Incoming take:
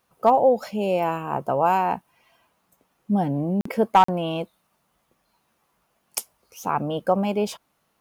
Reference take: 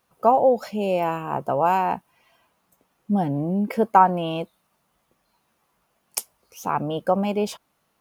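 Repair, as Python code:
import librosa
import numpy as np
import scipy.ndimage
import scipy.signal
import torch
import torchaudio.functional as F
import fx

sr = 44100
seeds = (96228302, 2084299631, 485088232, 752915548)

y = fx.fix_declip(x, sr, threshold_db=-7.5)
y = fx.fix_interpolate(y, sr, at_s=(3.61, 4.04), length_ms=44.0)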